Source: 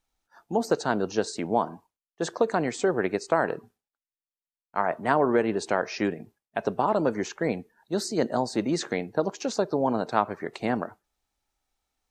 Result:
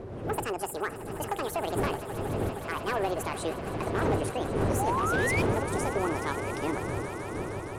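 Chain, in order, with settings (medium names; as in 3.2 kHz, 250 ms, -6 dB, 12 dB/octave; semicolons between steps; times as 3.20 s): gliding tape speed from 189% -> 122%; wind noise 490 Hz -29 dBFS; fifteen-band graphic EQ 100 Hz +11 dB, 400 Hz +7 dB, 10 kHz +9 dB; saturation -12.5 dBFS, distortion -15 dB; painted sound rise, 4.79–5.42 s, 760–2500 Hz -22 dBFS; hard clipper -15 dBFS, distortion -21 dB; on a send: echo with a slow build-up 156 ms, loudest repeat 5, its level -14.5 dB; on the sum: trim -7.5 dB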